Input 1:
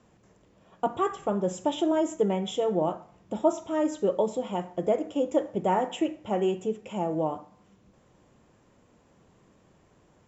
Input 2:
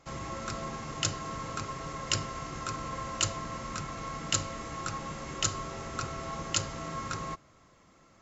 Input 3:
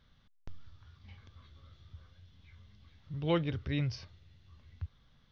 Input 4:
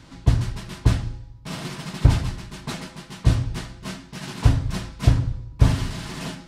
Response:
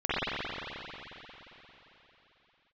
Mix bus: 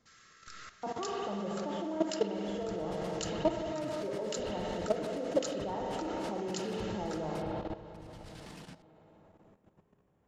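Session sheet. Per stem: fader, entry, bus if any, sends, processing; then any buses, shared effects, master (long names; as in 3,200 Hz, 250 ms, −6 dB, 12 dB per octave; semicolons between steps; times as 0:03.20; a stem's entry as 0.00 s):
−5.5 dB, 0.00 s, send −12.5 dB, high-shelf EQ 2,200 Hz −10 dB
−3.5 dB, 0.00 s, send −12 dB, Chebyshev high-pass with heavy ripple 1,200 Hz, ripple 6 dB
−9.0 dB, 0.00 s, no send, no processing
−4.5 dB, 2.35 s, no send, downward compressor 8 to 1, threshold −28 dBFS, peak gain reduction 19.5 dB; brickwall limiter −26 dBFS, peak gain reduction 9.5 dB; square-wave tremolo 9 Hz, depth 60%, duty 45%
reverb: on, RT60 3.8 s, pre-delay 44 ms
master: output level in coarse steps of 12 dB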